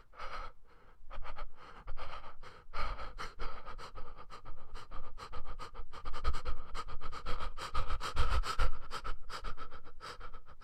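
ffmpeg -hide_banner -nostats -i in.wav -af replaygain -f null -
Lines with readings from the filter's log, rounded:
track_gain = +24.7 dB
track_peak = 0.137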